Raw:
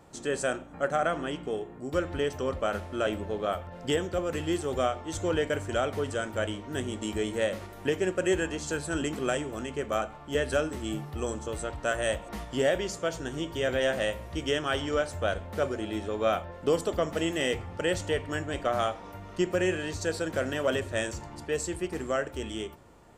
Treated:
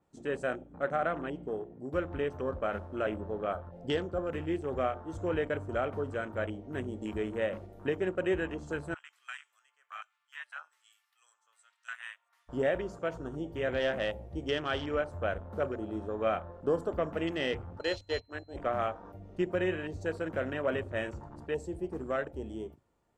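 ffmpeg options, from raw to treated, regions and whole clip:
ffmpeg -i in.wav -filter_complex "[0:a]asettb=1/sr,asplit=3[link_01][link_02][link_03];[link_01]atrim=end=8.944[link_04];[link_02]atrim=start=8.94:end=12.49,asetpts=PTS-STARTPTS,afade=type=in:duration=0.004:curve=qsin,afade=type=out:start_time=3.546:duration=0.004:curve=qsin,highpass=frequency=1200:width=0.5412,highpass=frequency=1200:width=1.3066,acrossover=split=1500[link_05][link_06];[link_05]aeval=exprs='val(0)*(1-0.7/2+0.7/2*cos(2*PI*1.2*n/s))':channel_layout=same[link_07];[link_06]aeval=exprs='val(0)*(1-0.7/2-0.7/2*cos(2*PI*1.2*n/s))':channel_layout=same[link_08];[link_07][link_08]amix=inputs=2:normalize=0[link_09];[link_03]atrim=start=12.486[link_10];[link_04][link_09]acrossfade=duration=0.004:curve1=hsin:curve2=qsin[link_11];[link_11][link_10]acrossfade=duration=0.004:curve1=qsin:curve2=hsin,asettb=1/sr,asplit=3[link_12][link_13][link_14];[link_12]atrim=end=17.794[link_15];[link_13]atrim=start=17.79:end=18.56,asetpts=PTS-STARTPTS,afade=type=in:duration=0.004:curve=qsin,afade=type=out:start_time=0.766:duration=0.004:curve=qsin,equalizer=frequency=160:width=2:gain=-14.5,aeval=exprs='val(0)+0.0158*sin(2*PI*4100*n/s)':channel_layout=same,agate=range=-33dB:threshold=-28dB:ratio=3:release=100:detection=peak[link_16];[link_14]atrim=start=18.556[link_17];[link_15][link_16]acrossfade=duration=0.004:curve1=hsin:curve2=qsin[link_18];[link_18][link_17]acrossfade=duration=0.004:curve1=qsin:curve2=hsin,afwtdn=0.0112,adynamicequalizer=threshold=0.00355:dfrequency=4400:dqfactor=0.7:tfrequency=4400:tqfactor=0.7:attack=5:release=100:ratio=0.375:range=2:mode=cutabove:tftype=highshelf,volume=-3.5dB" out.wav

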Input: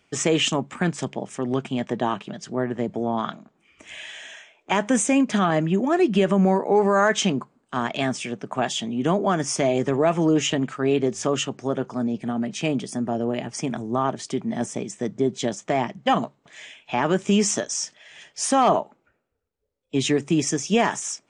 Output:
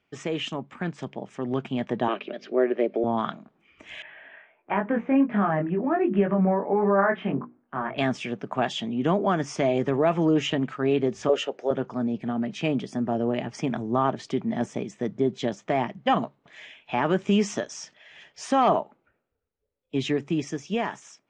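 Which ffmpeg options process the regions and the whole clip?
ffmpeg -i in.wav -filter_complex "[0:a]asettb=1/sr,asplit=3[link_01][link_02][link_03];[link_01]atrim=end=2.084[link_04];[link_02]atrim=start=2.08:end=3.04,asetpts=PTS-STARTPTS,afade=type=in:duration=0.004:curve=qsin,afade=type=out:start_time=0.956:duration=0.004:curve=qsin,aeval=exprs='val(0)+0.0141*(sin(2*PI*50*n/s)+sin(2*PI*2*50*n/s)/2+sin(2*PI*3*50*n/s)/3+sin(2*PI*4*50*n/s)/4+sin(2*PI*5*50*n/s)/5)':channel_layout=same,highpass=frequency=270:width=0.5412,highpass=frequency=270:width=1.3066,equalizer=frequency=380:width_type=q:width=4:gain=7,equalizer=frequency=570:width_type=q:width=4:gain=8,equalizer=frequency=920:width_type=q:width=4:gain=-8,equalizer=frequency=2400:width_type=q:width=4:gain=9,lowpass=frequency=5200:width=0.5412,lowpass=frequency=5200:width=1.3066[link_05];[link_03]atrim=start=3.036[link_06];[link_04][link_05]acrossfade=duration=0.004:curve1=hsin:curve2=qsin[link_07];[link_07][link_06]acrossfade=duration=0.004:curve1=qsin:curve2=hsin,asettb=1/sr,asplit=3[link_08][link_09][link_10];[link_08]atrim=end=4.024[link_11];[link_09]atrim=start=4.02:end=7.98,asetpts=PTS-STARTPTS,afade=type=in:duration=0.004:curve=qsin,afade=type=out:start_time=3.956:duration=0.004:curve=qsin,lowpass=frequency=2100:width=0.5412,lowpass=frequency=2100:width=1.3066,bandreject=frequency=60:width_type=h:width=6,bandreject=frequency=120:width_type=h:width=6,bandreject=frequency=180:width_type=h:width=6,bandreject=frequency=240:width_type=h:width=6,bandreject=frequency=300:width_type=h:width=6,bandreject=frequency=360:width_type=h:width=6,bandreject=frequency=420:width_type=h:width=6,bandreject=frequency=480:width_type=h:width=6,flanger=delay=19.5:depth=3.3:speed=1.4[link_12];[link_10]atrim=start=7.976[link_13];[link_11][link_12]acrossfade=duration=0.004:curve1=hsin:curve2=qsin[link_14];[link_14][link_13]acrossfade=duration=0.004:curve1=qsin:curve2=hsin,asettb=1/sr,asplit=3[link_15][link_16][link_17];[link_15]atrim=end=11.294[link_18];[link_16]atrim=start=11.29:end=11.71,asetpts=PTS-STARTPTS,afade=type=in:duration=0.004:curve=qsin,afade=type=out:start_time=0.416:duration=0.004:curve=qsin,highpass=frequency=500:width_type=q:width=2.8,equalizer=frequency=1100:width=5.9:gain=-12[link_19];[link_17]atrim=start=11.706[link_20];[link_18][link_19]acrossfade=duration=0.004:curve1=hsin:curve2=qsin[link_21];[link_21][link_20]acrossfade=duration=0.004:curve1=qsin:curve2=hsin,lowpass=3700,dynaudnorm=framelen=310:gausssize=9:maxgain=11.5dB,volume=-8.5dB" out.wav

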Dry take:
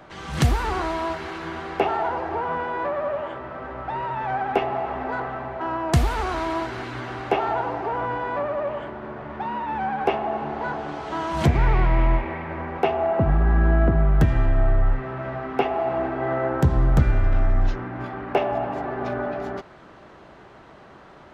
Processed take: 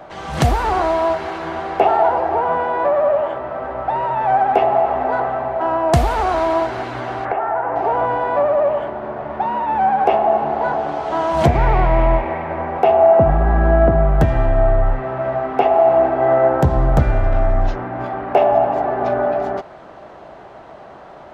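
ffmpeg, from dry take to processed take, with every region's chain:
ffmpeg -i in.wav -filter_complex "[0:a]asettb=1/sr,asplit=3[link_01][link_02][link_03];[link_01]atrim=end=7.254[link_04];[link_02]atrim=start=7.25:end=7.76,asetpts=PTS-STARTPTS,afade=type=in:duration=0.004:curve=qsin,afade=type=out:start_time=0.506:duration=0.004:curve=qsin,lowpass=frequency=1700:width_type=q:width=2.3,acompressor=threshold=-26dB:ratio=5:attack=3.2:release=140:knee=1:detection=peak[link_05];[link_03]atrim=start=7.756[link_06];[link_04][link_05]acrossfade=duration=0.004:curve1=hsin:curve2=qsin[link_07];[link_07][link_06]acrossfade=duration=0.004:curve1=qsin:curve2=hsin,equalizer=frequency=680:width_type=o:width=0.97:gain=10.5,alimiter=level_in=3.5dB:limit=-1dB:release=50:level=0:latency=1,volume=-1dB" out.wav

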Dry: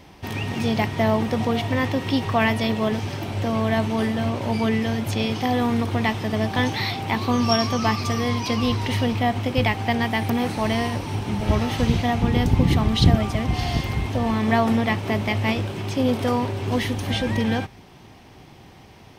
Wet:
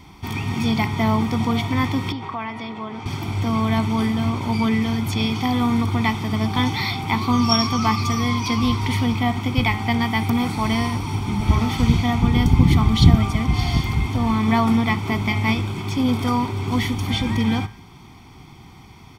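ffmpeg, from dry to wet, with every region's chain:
ffmpeg -i in.wav -filter_complex "[0:a]asettb=1/sr,asplit=3[link_01][link_02][link_03];[link_01]atrim=end=2.124[link_04];[link_02]atrim=start=2.12:end=3.06,asetpts=PTS-STARTPTS,afade=type=in:duration=0.004:curve=qsin,afade=type=out:start_time=0.936:duration=0.004:curve=qsin,acompressor=threshold=-23dB:ratio=5:attack=3.2:release=140:knee=1:detection=peak,bandpass=frequency=1700:width_type=q:width=0.54,tiltshelf=frequency=1200:gain=6.5[link_05];[link_03]atrim=start=3.056[link_06];[link_04][link_05]acrossfade=duration=0.004:curve1=hsin:curve2=qsin[link_07];[link_07][link_06]acrossfade=duration=0.004:curve1=qsin:curve2=hsin,aecho=1:1:0.9:0.76,bandreject=frequency=105.9:width_type=h:width=4,bandreject=frequency=211.8:width_type=h:width=4,bandreject=frequency=317.7:width_type=h:width=4,bandreject=frequency=423.6:width_type=h:width=4,bandreject=frequency=529.5:width_type=h:width=4,bandreject=frequency=635.4:width_type=h:width=4,bandreject=frequency=741.3:width_type=h:width=4,bandreject=frequency=847.2:width_type=h:width=4,bandreject=frequency=953.1:width_type=h:width=4,bandreject=frequency=1059:width_type=h:width=4,bandreject=frequency=1164.9:width_type=h:width=4,bandreject=frequency=1270.8:width_type=h:width=4,bandreject=frequency=1376.7:width_type=h:width=4,bandreject=frequency=1482.6:width_type=h:width=4,bandreject=frequency=1588.5:width_type=h:width=4,bandreject=frequency=1694.4:width_type=h:width=4,bandreject=frequency=1800.3:width_type=h:width=4,bandreject=frequency=1906.2:width_type=h:width=4,bandreject=frequency=2012.1:width_type=h:width=4,bandreject=frequency=2118:width_type=h:width=4,bandreject=frequency=2223.9:width_type=h:width=4,bandreject=frequency=2329.8:width_type=h:width=4,bandreject=frequency=2435.7:width_type=h:width=4,bandreject=frequency=2541.6:width_type=h:width=4,bandreject=frequency=2647.5:width_type=h:width=4,bandreject=frequency=2753.4:width_type=h:width=4,bandreject=frequency=2859.3:width_type=h:width=4,bandreject=frequency=2965.2:width_type=h:width=4,bandreject=frequency=3071.1:width_type=h:width=4,bandreject=frequency=3177:width_type=h:width=4,bandreject=frequency=3282.9:width_type=h:width=4,bandreject=frequency=3388.8:width_type=h:width=4,bandreject=frequency=3494.7:width_type=h:width=4,bandreject=frequency=3600.6:width_type=h:width=4,bandreject=frequency=3706.5:width_type=h:width=4,bandreject=frequency=3812.4:width_type=h:width=4" out.wav

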